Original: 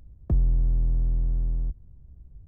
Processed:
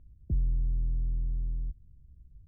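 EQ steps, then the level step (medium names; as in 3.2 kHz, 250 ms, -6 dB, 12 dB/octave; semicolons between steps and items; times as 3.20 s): Gaussian low-pass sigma 20 samples; distance through air 470 m; -6.0 dB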